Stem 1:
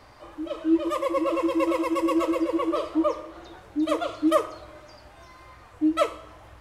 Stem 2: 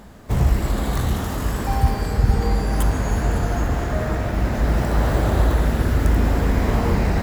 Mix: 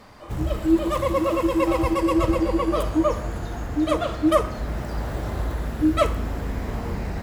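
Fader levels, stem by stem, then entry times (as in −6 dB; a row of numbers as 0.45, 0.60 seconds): +2.5, −9.5 decibels; 0.00, 0.00 seconds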